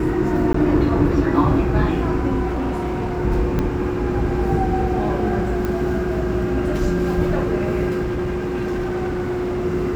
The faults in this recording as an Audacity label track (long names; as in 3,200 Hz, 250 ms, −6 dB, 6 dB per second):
0.530000	0.540000	drop-out 14 ms
2.470000	3.100000	clipping −19 dBFS
3.590000	3.590000	click −10 dBFS
5.650000	5.650000	click −12 dBFS
8.020000	9.660000	clipping −19.5 dBFS